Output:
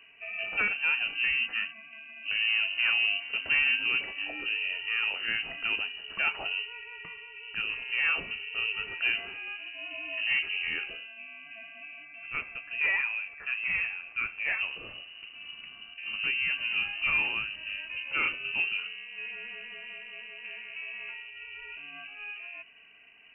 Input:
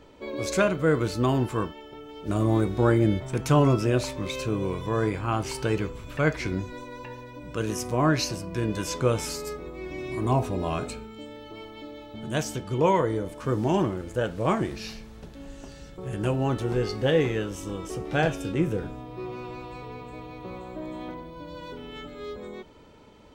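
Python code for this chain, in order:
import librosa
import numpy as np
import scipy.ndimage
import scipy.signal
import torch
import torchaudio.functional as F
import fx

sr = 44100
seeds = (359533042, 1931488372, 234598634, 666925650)

y = fx.highpass(x, sr, hz=240.0, slope=12, at=(12.05, 14.59))
y = 10.0 ** (-15.5 / 20.0) * np.tanh(y / 10.0 ** (-15.5 / 20.0))
y = fx.freq_invert(y, sr, carrier_hz=2900)
y = y * 10.0 ** (-4.0 / 20.0)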